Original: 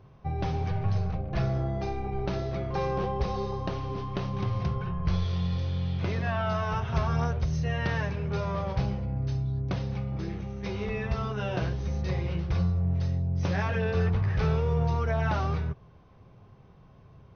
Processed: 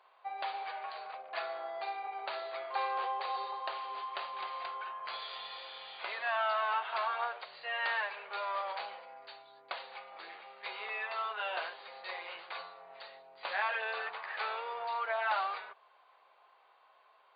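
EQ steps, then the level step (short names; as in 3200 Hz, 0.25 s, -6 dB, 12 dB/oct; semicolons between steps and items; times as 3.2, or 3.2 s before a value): HPF 730 Hz 24 dB/oct; brick-wall FIR low-pass 4800 Hz; +1.5 dB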